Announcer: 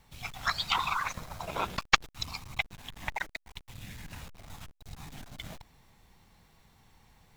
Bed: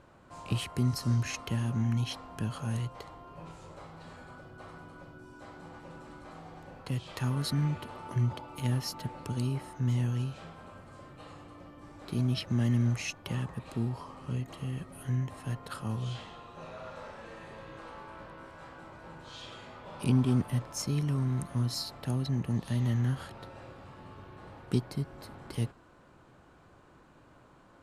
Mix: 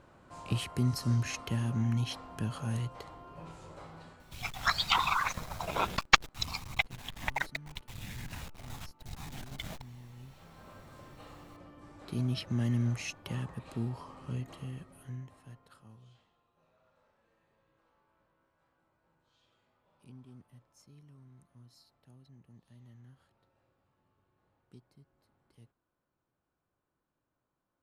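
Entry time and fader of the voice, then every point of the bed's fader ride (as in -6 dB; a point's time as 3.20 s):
4.20 s, +1.5 dB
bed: 3.99 s -1 dB
4.52 s -21.5 dB
10.09 s -21.5 dB
10.71 s -3 dB
14.49 s -3 dB
16.35 s -27 dB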